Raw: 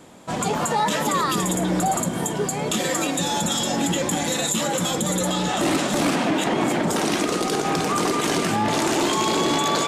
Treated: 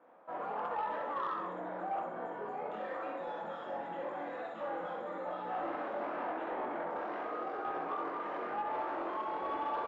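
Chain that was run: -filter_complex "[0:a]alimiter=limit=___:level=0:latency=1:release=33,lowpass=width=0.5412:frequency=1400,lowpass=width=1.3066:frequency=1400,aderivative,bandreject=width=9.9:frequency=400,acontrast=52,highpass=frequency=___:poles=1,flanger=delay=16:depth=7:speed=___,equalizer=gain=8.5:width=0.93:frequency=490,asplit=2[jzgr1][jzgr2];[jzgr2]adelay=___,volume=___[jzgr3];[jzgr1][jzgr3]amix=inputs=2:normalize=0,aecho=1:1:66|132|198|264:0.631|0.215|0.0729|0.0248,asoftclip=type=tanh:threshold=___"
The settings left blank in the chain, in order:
-16dB, 200, 0.91, 24, -7dB, -27dB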